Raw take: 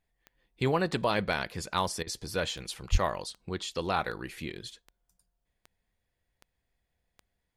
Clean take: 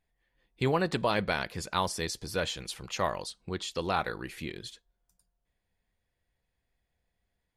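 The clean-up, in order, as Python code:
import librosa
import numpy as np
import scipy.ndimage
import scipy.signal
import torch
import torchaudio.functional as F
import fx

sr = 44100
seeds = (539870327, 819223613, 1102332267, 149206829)

y = fx.fix_declip(x, sr, threshold_db=-15.0)
y = fx.fix_declick_ar(y, sr, threshold=10.0)
y = fx.highpass(y, sr, hz=140.0, slope=24, at=(2.91, 3.03), fade=0.02)
y = fx.fix_interpolate(y, sr, at_s=(2.03,), length_ms=37.0)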